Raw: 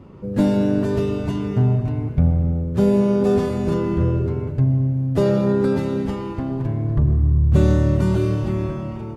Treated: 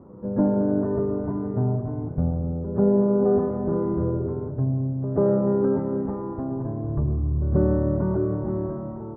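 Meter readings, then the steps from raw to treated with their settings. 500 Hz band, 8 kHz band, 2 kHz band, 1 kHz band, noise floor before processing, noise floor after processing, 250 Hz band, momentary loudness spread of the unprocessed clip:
−1.5 dB, can't be measured, below −10 dB, −3.0 dB, −30 dBFS, −34 dBFS, −3.5 dB, 8 LU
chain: Bessel low-pass filter 810 Hz, order 8
low-shelf EQ 200 Hz −11.5 dB
backwards echo 139 ms −15.5 dB
level +1.5 dB

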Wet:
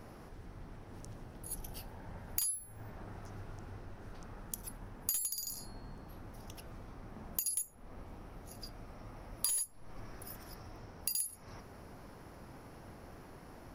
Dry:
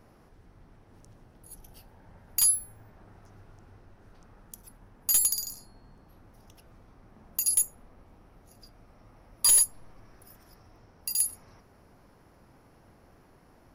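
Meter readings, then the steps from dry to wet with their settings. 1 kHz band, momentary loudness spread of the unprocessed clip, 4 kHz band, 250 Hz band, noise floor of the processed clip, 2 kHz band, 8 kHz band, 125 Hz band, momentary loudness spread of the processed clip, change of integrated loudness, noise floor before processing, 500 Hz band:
+1.0 dB, 15 LU, −10.0 dB, +4.5 dB, −54 dBFS, −3.0 dB, −12.0 dB, +5.0 dB, 19 LU, −15.5 dB, −59 dBFS, +3.5 dB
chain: downward compressor 12 to 1, threshold −39 dBFS, peak gain reduction 21 dB
level +6 dB

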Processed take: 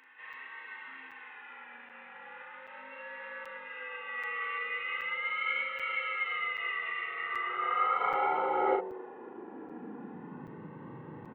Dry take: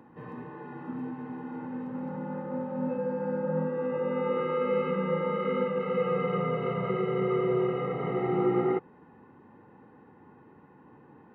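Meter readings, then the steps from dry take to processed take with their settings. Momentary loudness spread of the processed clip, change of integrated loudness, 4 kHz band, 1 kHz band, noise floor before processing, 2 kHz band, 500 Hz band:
18 LU, −3.0 dB, can't be measured, +2.5 dB, −56 dBFS, +9.0 dB, −12.0 dB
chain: running median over 9 samples
hum removal 46.35 Hz, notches 24
downward compressor, threshold −29 dBFS, peak gain reduction 7 dB
downsampling to 8,000 Hz
pitch vibrato 0.39 Hz 95 cents
double-tracking delay 38 ms −4 dB
backwards echo 1,052 ms −13.5 dB
high-pass filter sweep 2,200 Hz → 110 Hz, 0:07.07–0:10.94
regular buffer underruns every 0.78 s, samples 256, zero, from 0:00.33
level +5.5 dB

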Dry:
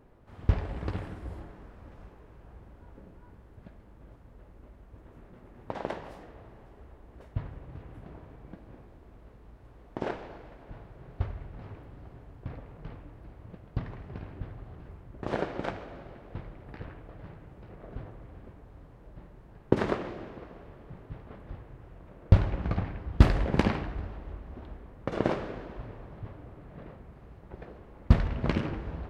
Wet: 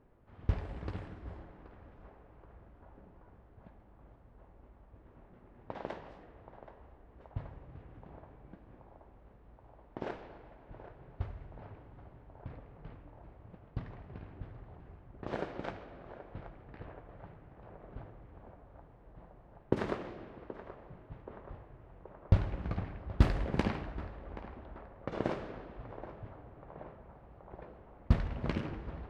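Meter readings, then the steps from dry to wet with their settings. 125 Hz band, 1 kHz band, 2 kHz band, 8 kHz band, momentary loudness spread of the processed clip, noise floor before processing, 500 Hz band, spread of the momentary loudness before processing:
−6.5 dB, −5.5 dB, −6.5 dB, can't be measured, 24 LU, −54 dBFS, −6.0 dB, 23 LU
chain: low-pass that shuts in the quiet parts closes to 2,900 Hz, open at −24.5 dBFS
on a send: feedback echo with a band-pass in the loop 777 ms, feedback 82%, band-pass 800 Hz, level −11 dB
on the sum: level −6.5 dB

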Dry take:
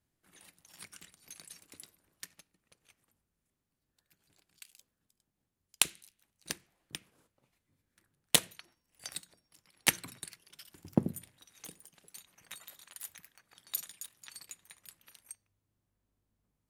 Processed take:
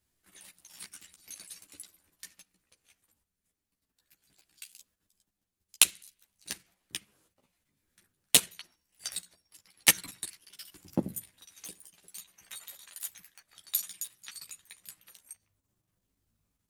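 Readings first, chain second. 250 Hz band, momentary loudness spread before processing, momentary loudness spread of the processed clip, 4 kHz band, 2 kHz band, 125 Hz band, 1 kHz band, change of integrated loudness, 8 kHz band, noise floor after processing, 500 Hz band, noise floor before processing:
−1.5 dB, 23 LU, 23 LU, +4.0 dB, +3.5 dB, −3.0 dB, +0.5 dB, +5.5 dB, +6.5 dB, below −85 dBFS, −0.5 dB, −85 dBFS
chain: high-shelf EQ 2,200 Hz +7.5 dB
output level in coarse steps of 9 dB
multi-voice chorus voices 6, 0.54 Hz, delay 13 ms, depth 3.2 ms
level +5 dB

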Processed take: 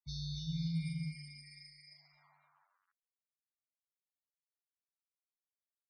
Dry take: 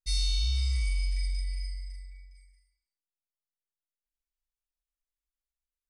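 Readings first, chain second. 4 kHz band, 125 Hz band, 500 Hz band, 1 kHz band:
−12.5 dB, −6.5 dB, can't be measured, −6.0 dB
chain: notch filter 1,300 Hz, Q 5.9
low-pass that shuts in the quiet parts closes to 680 Hz, open at −28 dBFS
mains-hum notches 50/100/150/200/250/300/350 Hz
reversed playback
downward compressor 6 to 1, threshold −39 dBFS, peak gain reduction 14.5 dB
reversed playback
bit reduction 11 bits
ring modulation 100 Hz
high-pass filter sweep 74 Hz → 1,800 Hz, 0:00.09–0:02.87
spectral peaks only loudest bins 32
single-tap delay 271 ms −4 dB
level +2 dB

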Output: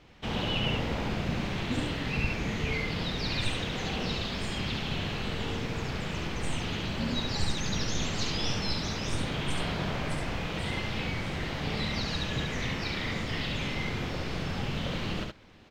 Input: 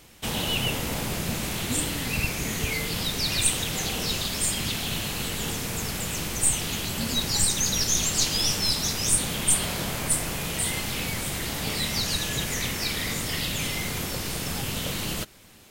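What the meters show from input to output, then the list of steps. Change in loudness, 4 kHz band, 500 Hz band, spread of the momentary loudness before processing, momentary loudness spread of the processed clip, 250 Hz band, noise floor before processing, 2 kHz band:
−6.5 dB, −6.5 dB, −1.0 dB, 7 LU, 3 LU, −0.5 dB, −32 dBFS, −3.0 dB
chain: high-frequency loss of the air 220 metres
on a send: single-tap delay 70 ms −3.5 dB
on the sum: level −2 dB

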